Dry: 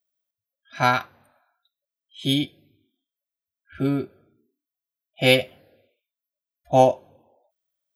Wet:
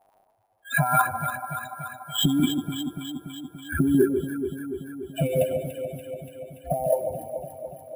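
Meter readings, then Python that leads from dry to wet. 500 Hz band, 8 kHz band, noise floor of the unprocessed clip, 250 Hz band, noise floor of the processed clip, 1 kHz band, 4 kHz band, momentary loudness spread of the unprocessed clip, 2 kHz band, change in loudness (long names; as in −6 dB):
−1.5 dB, +6.5 dB, below −85 dBFS, +3.0 dB, −65 dBFS, −3.0 dB, −4.0 dB, 15 LU, −2.0 dB, −4.5 dB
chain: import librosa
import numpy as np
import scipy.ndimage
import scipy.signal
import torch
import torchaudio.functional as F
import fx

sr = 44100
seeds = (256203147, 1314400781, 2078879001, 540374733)

y = fx.spec_expand(x, sr, power=2.7)
y = fx.over_compress(y, sr, threshold_db=-30.0, ratio=-1.0)
y = fx.sample_hold(y, sr, seeds[0], rate_hz=11000.0, jitter_pct=0)
y = fx.echo_alternate(y, sr, ms=144, hz=960.0, feedback_pct=82, wet_db=-6.5)
y = y * librosa.db_to_amplitude(8.0)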